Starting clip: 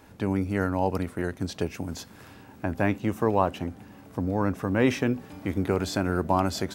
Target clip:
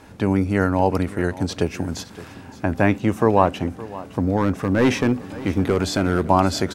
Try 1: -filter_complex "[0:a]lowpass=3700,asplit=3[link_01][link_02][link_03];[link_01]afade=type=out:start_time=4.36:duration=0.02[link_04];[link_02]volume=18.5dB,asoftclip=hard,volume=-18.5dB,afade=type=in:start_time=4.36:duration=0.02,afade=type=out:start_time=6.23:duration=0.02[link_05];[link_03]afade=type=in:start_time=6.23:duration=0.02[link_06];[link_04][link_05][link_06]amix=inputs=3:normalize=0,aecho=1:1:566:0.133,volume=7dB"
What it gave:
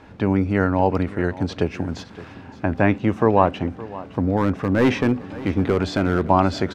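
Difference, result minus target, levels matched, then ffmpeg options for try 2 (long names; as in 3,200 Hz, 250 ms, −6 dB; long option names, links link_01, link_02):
8,000 Hz band −10.5 dB
-filter_complex "[0:a]lowpass=11000,asplit=3[link_01][link_02][link_03];[link_01]afade=type=out:start_time=4.36:duration=0.02[link_04];[link_02]volume=18.5dB,asoftclip=hard,volume=-18.5dB,afade=type=in:start_time=4.36:duration=0.02,afade=type=out:start_time=6.23:duration=0.02[link_05];[link_03]afade=type=in:start_time=6.23:duration=0.02[link_06];[link_04][link_05][link_06]amix=inputs=3:normalize=0,aecho=1:1:566:0.133,volume=7dB"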